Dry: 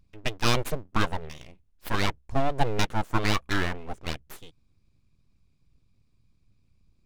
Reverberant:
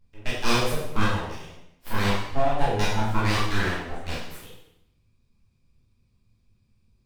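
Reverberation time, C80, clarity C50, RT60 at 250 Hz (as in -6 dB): 0.80 s, 4.5 dB, 0.5 dB, 0.75 s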